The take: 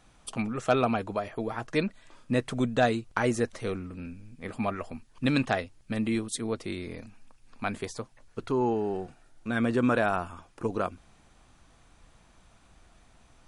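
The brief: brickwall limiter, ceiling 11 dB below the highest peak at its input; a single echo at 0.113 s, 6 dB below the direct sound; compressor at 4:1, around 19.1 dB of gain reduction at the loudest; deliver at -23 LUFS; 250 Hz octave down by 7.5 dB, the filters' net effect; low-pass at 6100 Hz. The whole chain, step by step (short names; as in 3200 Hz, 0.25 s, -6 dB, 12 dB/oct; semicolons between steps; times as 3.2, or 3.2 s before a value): LPF 6100 Hz; bell 250 Hz -9 dB; compressor 4:1, threshold -44 dBFS; limiter -35 dBFS; echo 0.113 s -6 dB; gain +24.5 dB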